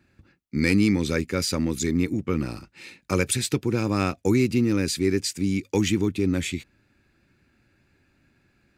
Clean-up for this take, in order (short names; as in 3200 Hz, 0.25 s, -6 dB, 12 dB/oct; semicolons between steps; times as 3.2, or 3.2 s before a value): clip repair -10 dBFS